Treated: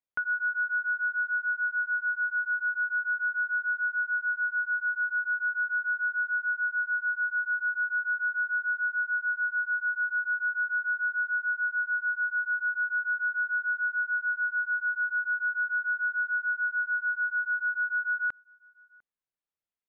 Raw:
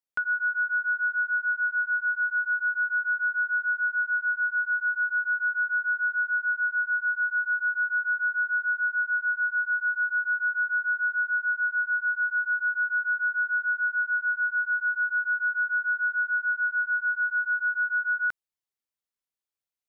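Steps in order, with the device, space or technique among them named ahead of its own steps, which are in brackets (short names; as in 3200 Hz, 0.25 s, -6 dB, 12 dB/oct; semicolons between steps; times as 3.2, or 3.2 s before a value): shout across a valley (air absorption 340 m; outdoor echo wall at 120 m, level -27 dB)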